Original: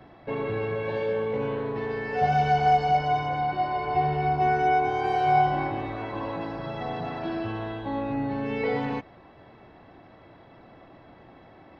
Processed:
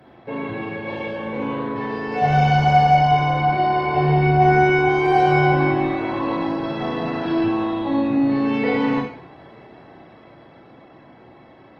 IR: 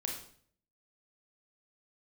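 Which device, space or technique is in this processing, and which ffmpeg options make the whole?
far-field microphone of a smart speaker: -filter_complex "[1:a]atrim=start_sample=2205[a];[0:a][a]afir=irnorm=-1:irlink=0,highpass=100,dynaudnorm=f=200:g=21:m=4dB,volume=3dB" -ar 48000 -c:a libopus -b:a 24k

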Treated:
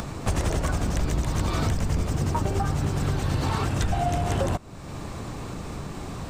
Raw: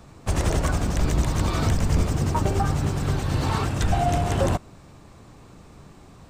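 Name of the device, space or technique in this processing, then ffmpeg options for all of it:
upward and downward compression: -af "acompressor=mode=upward:threshold=-33dB:ratio=2.5,acompressor=threshold=-30dB:ratio=4,volume=7dB"

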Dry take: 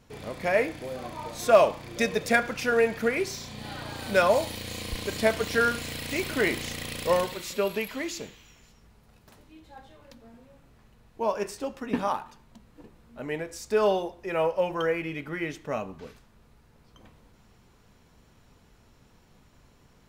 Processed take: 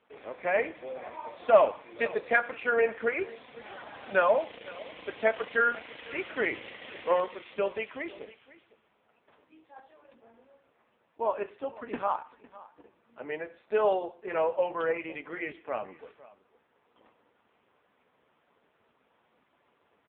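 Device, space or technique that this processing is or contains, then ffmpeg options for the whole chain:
satellite phone: -af "highpass=400,lowpass=3.1k,aecho=1:1:505:0.106" -ar 8000 -c:a libopencore_amrnb -b:a 5900

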